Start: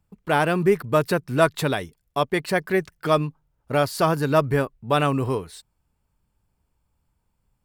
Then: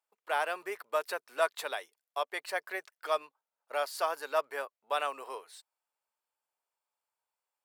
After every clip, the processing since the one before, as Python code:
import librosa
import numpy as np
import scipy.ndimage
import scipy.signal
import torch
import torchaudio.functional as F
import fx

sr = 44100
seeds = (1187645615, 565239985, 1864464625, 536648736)

y = scipy.signal.sosfilt(scipy.signal.butter(4, 560.0, 'highpass', fs=sr, output='sos'), x)
y = y * librosa.db_to_amplitude(-9.0)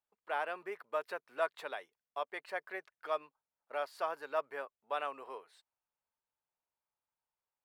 y = fx.bass_treble(x, sr, bass_db=11, treble_db=-13)
y = y * librosa.db_to_amplitude(-5.0)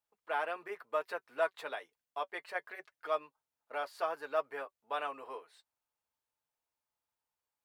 y = fx.notch_comb(x, sr, f0_hz=190.0)
y = y * librosa.db_to_amplitude(2.5)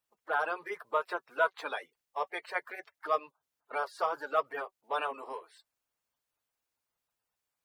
y = fx.spec_quant(x, sr, step_db=30)
y = y * librosa.db_to_amplitude(4.5)